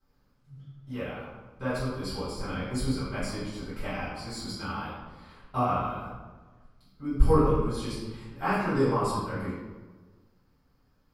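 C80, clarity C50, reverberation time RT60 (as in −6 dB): 2.0 dB, −0.5 dB, 1.3 s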